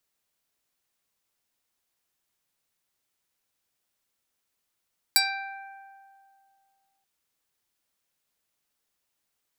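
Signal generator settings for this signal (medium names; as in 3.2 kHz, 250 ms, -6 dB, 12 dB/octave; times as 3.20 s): plucked string G5, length 1.88 s, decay 2.43 s, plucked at 0.25, medium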